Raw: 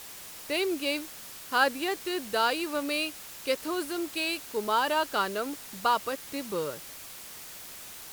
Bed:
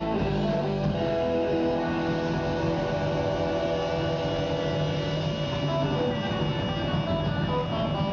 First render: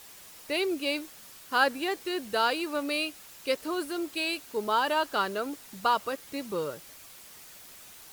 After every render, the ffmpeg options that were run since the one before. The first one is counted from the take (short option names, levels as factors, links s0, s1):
-af "afftdn=nr=6:nf=-45"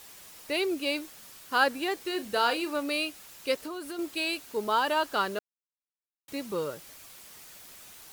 -filter_complex "[0:a]asettb=1/sr,asplit=3[s0][s1][s2];[s0]atrim=end=2.034[s3];[s1]atrim=start=2.03:end=2.74,asetpts=PTS-STARTPTS,afade=t=in:d=0.004:c=qsin,afade=t=out:st=0.706:d=0.004:c=qsin,asplit=2[s4][s5];[s5]adelay=38,volume=0.266[s6];[s4][s6]amix=inputs=2:normalize=0,atrim=end_sample=31311[s7];[s2]atrim=start=2.736[s8];[s3][s7]acrossfade=d=0.004:c1=hsin:c2=qsin[s9];[s9][s8]acrossfade=d=0.004:c1=qsin:c2=hsin,asettb=1/sr,asplit=3[s10][s11][s12];[s10]atrim=end=3.594[s13];[s11]atrim=start=3.59:end=3.99,asetpts=PTS-STARTPTS,afade=t=in:d=0.004:c=qsin,afade=t=out:st=0.396:d=0.004:c=qsin,acompressor=threshold=0.02:ratio=6:attack=3.2:release=140:knee=1:detection=peak[s14];[s12]atrim=start=3.986[s15];[s13][s14]acrossfade=d=0.004:c1=hsin:c2=qsin[s16];[s16][s15]acrossfade=d=0.004:c1=qsin:c2=hsin,asplit=3[s17][s18][s19];[s17]atrim=end=5.39,asetpts=PTS-STARTPTS,afade=t=out:st=5.386:d=0.004:c=hsin[s20];[s18]atrim=start=5.39:end=6.28,asetpts=PTS-STARTPTS,volume=0[s21];[s19]atrim=start=6.28,asetpts=PTS-STARTPTS,afade=t=in:d=0.004:c=hsin[s22];[s20][s21][s22]concat=n=3:v=0:a=1"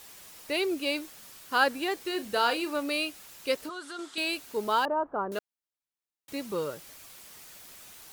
-filter_complex "[0:a]asettb=1/sr,asplit=3[s0][s1][s2];[s0]atrim=end=3.694[s3];[s1]atrim=start=3.69:end=4.18,asetpts=PTS-STARTPTS,afade=t=in:d=0.004:c=qsin,afade=t=out:st=0.486:d=0.004:c=qsin,highpass=250,equalizer=f=320:t=q:w=4:g=-7,equalizer=f=570:t=q:w=4:g=-9,equalizer=f=1400:t=q:w=4:g=8,equalizer=f=2500:t=q:w=4:g=-6,equalizer=f=3500:t=q:w=4:g=7,equalizer=f=8100:t=q:w=4:g=3,lowpass=f=8700:w=0.5412,lowpass=f=8700:w=1.3066[s4];[s2]atrim=start=4.176[s5];[s3][s4]acrossfade=d=0.004:c1=hsin:c2=qsin[s6];[s6][s5]acrossfade=d=0.004:c1=qsin:c2=hsin,asettb=1/sr,asplit=3[s7][s8][s9];[s7]atrim=end=4.854[s10];[s8]atrim=start=4.85:end=5.32,asetpts=PTS-STARTPTS,afade=t=in:d=0.004:c=qsin,afade=t=out:st=0.466:d=0.004:c=qsin,lowpass=f=1100:w=0.5412,lowpass=f=1100:w=1.3066[s11];[s9]atrim=start=5.316[s12];[s10][s11]acrossfade=d=0.004:c1=hsin:c2=qsin[s13];[s13][s12]acrossfade=d=0.004:c1=qsin:c2=hsin"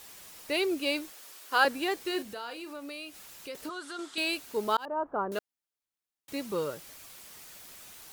-filter_complex "[0:a]asettb=1/sr,asplit=3[s0][s1][s2];[s0]atrim=end=1.124[s3];[s1]atrim=start=1.12:end=1.65,asetpts=PTS-STARTPTS,afade=t=in:d=0.004:c=qsin,afade=t=out:st=0.526:d=0.004:c=qsin,highpass=f=310:w=0.5412,highpass=f=310:w=1.3066[s4];[s2]atrim=start=1.646[s5];[s3][s4]acrossfade=d=0.004:c1=hsin:c2=qsin[s6];[s6][s5]acrossfade=d=0.004:c1=qsin:c2=hsin,asettb=1/sr,asplit=3[s7][s8][s9];[s7]atrim=end=2.224[s10];[s8]atrim=start=2.22:end=3.55,asetpts=PTS-STARTPTS,afade=t=in:d=0.004:c=qsin,afade=t=out:st=1.326:d=0.004:c=qsin,acompressor=threshold=0.00708:ratio=2.5:attack=3.2:release=140:knee=1:detection=peak[s11];[s9]atrim=start=3.546[s12];[s10][s11]acrossfade=d=0.004:c1=hsin:c2=qsin[s13];[s13][s12]acrossfade=d=0.004:c1=qsin:c2=hsin,asplit=2[s14][s15];[s14]atrim=end=4.77,asetpts=PTS-STARTPTS,afade=t=out:st=4.766:d=0.004:c=hsin[s16];[s15]atrim=start=4.77,asetpts=PTS-STARTPTS,afade=t=in:d=0.42:c=qsin[s17];[s16][s17]concat=n=2:v=0:a=1"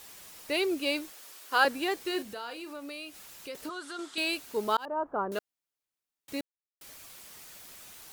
-filter_complex "[0:a]asplit=3[s0][s1][s2];[s0]atrim=end=6.41,asetpts=PTS-STARTPTS,afade=t=out:st=6.406:d=0.004:c=hsin[s3];[s1]atrim=start=6.41:end=6.81,asetpts=PTS-STARTPTS,volume=0[s4];[s2]atrim=start=6.81,asetpts=PTS-STARTPTS,afade=t=in:d=0.004:c=hsin[s5];[s3][s4][s5]concat=n=3:v=0:a=1"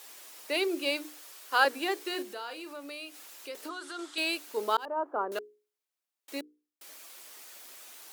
-af "highpass=f=280:w=0.5412,highpass=f=280:w=1.3066,bandreject=f=60:t=h:w=6,bandreject=f=120:t=h:w=6,bandreject=f=180:t=h:w=6,bandreject=f=240:t=h:w=6,bandreject=f=300:t=h:w=6,bandreject=f=360:t=h:w=6,bandreject=f=420:t=h:w=6,bandreject=f=480:t=h:w=6"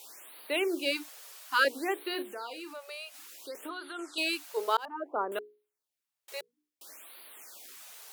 -af "afftfilt=real='re*(1-between(b*sr/1024,250*pow(6900/250,0.5+0.5*sin(2*PI*0.59*pts/sr))/1.41,250*pow(6900/250,0.5+0.5*sin(2*PI*0.59*pts/sr))*1.41))':imag='im*(1-between(b*sr/1024,250*pow(6900/250,0.5+0.5*sin(2*PI*0.59*pts/sr))/1.41,250*pow(6900/250,0.5+0.5*sin(2*PI*0.59*pts/sr))*1.41))':win_size=1024:overlap=0.75"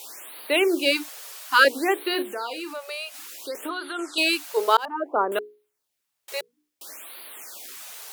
-af "volume=2.82"